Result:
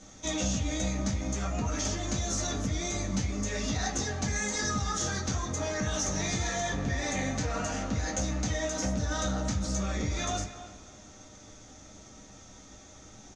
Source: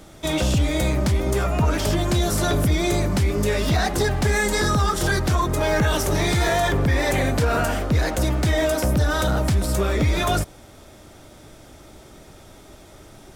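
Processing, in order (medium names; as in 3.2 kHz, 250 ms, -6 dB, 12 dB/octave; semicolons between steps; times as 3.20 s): compression, threshold -22 dBFS, peak gain reduction 6.5 dB; four-pole ladder low-pass 6.7 kHz, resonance 85%; speakerphone echo 290 ms, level -13 dB; reverberation, pre-delay 3 ms, DRR -5 dB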